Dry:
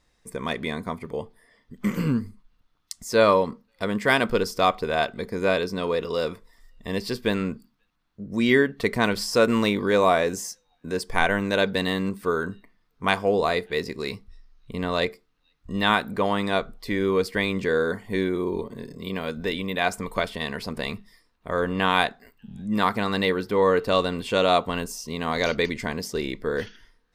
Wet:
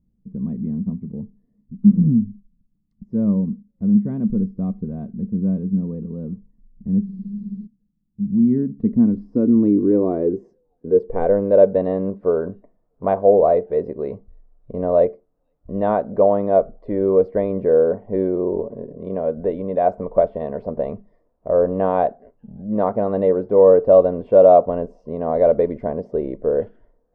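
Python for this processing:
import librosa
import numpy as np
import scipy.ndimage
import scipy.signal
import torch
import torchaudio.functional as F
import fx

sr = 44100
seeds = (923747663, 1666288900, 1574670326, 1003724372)

y = fx.filter_sweep_lowpass(x, sr, from_hz=200.0, to_hz=600.0, start_s=8.45, end_s=11.77, q=4.9)
y = fx.spec_freeze(y, sr, seeds[0], at_s=7.07, hold_s=0.59)
y = F.gain(torch.from_numpy(y), 1.0).numpy()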